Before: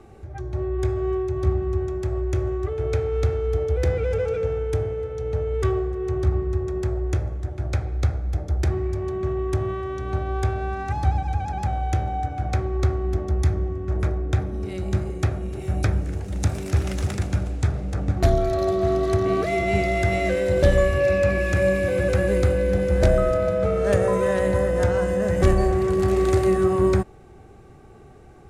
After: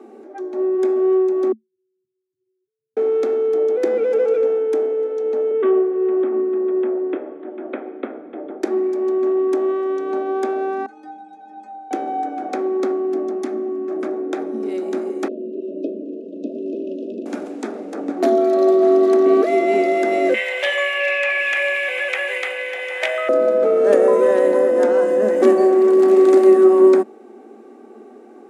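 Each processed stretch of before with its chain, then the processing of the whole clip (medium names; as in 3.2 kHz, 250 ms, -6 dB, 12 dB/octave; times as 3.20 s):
1.52–2.97 s: spectral contrast enhancement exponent 2.8 + Chebyshev band-stop 170–6100 Hz, order 5
5.51–8.62 s: steep low-pass 3.4 kHz 72 dB/octave + band-stop 800 Hz, Q 15
10.86–11.91 s: ring modulator 24 Hz + inharmonic resonator 91 Hz, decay 0.85 s, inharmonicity 0.03
12.92–14.13 s: band-stop 900 Hz, Q 9.4 + comb of notches 480 Hz + loudspeaker Doppler distortion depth 0.16 ms
15.28–17.26 s: brick-wall FIR band-stop 680–2500 Hz + tape spacing loss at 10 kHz 42 dB
20.34–23.29 s: high-pass 760 Hz 24 dB/octave + high-order bell 2.5 kHz +16 dB 1.1 oct
whole clip: Chebyshev high-pass 220 Hz, order 8; tilt shelf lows +7 dB, about 780 Hz; trim +5.5 dB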